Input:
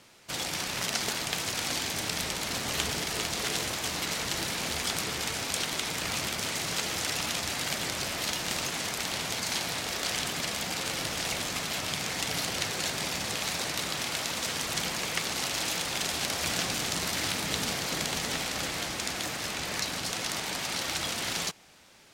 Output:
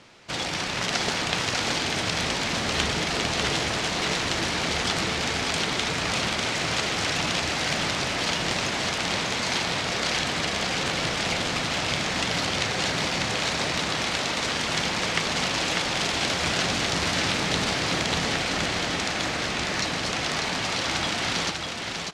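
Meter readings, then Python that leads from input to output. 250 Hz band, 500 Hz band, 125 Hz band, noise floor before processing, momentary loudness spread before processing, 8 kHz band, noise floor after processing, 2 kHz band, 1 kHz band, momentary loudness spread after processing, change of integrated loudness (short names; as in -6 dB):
+8.0 dB, +7.5 dB, +8.0 dB, -35 dBFS, 2 LU, +0.5 dB, -30 dBFS, +7.0 dB, +7.5 dB, 2 LU, +5.0 dB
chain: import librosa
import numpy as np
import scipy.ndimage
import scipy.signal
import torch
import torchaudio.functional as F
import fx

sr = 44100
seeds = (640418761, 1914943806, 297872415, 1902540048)

y = fx.air_absorb(x, sr, metres=92.0)
y = y + 10.0 ** (-4.0 / 20.0) * np.pad(y, (int(596 * sr / 1000.0), 0))[:len(y)]
y = y * 10.0 ** (6.5 / 20.0)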